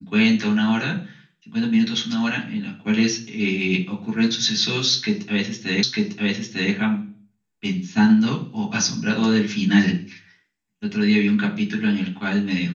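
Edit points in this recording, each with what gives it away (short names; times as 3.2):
5.83 repeat of the last 0.9 s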